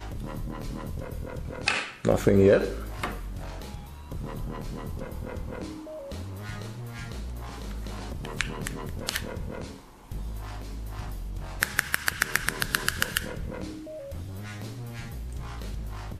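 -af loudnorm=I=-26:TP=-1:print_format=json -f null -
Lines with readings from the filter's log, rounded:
"input_i" : "-31.7",
"input_tp" : "-5.8",
"input_lra" : "11.4",
"input_thresh" : "-41.8",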